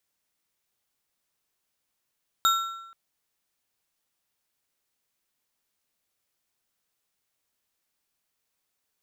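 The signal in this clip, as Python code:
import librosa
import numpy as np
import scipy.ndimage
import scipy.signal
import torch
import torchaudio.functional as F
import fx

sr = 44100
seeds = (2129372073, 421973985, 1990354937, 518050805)

y = fx.strike_metal(sr, length_s=0.48, level_db=-17.5, body='bar', hz=1350.0, decay_s=0.94, tilt_db=4.5, modes=4)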